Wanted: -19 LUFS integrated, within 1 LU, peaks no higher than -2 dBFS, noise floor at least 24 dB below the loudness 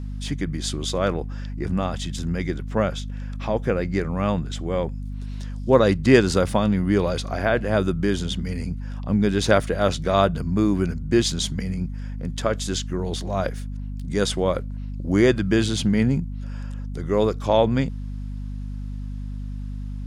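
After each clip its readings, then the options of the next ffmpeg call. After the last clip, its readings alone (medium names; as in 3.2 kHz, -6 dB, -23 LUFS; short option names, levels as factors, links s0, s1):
hum 50 Hz; highest harmonic 250 Hz; hum level -28 dBFS; loudness -23.0 LUFS; peak level -2.5 dBFS; loudness target -19.0 LUFS
-> -af "bandreject=f=50:t=h:w=6,bandreject=f=100:t=h:w=6,bandreject=f=150:t=h:w=6,bandreject=f=200:t=h:w=6,bandreject=f=250:t=h:w=6"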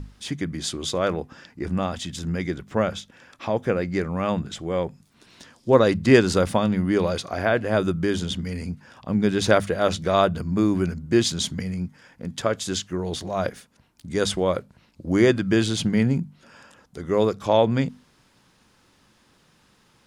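hum not found; loudness -23.5 LUFS; peak level -2.5 dBFS; loudness target -19.0 LUFS
-> -af "volume=1.68,alimiter=limit=0.794:level=0:latency=1"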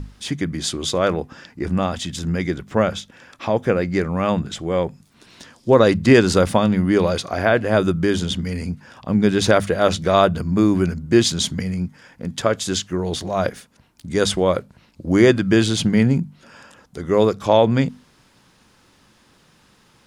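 loudness -19.5 LUFS; peak level -2.0 dBFS; noise floor -56 dBFS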